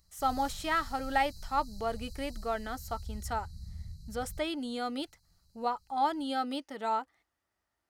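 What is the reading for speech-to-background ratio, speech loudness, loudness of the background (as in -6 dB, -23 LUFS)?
13.0 dB, -34.0 LUFS, -47.0 LUFS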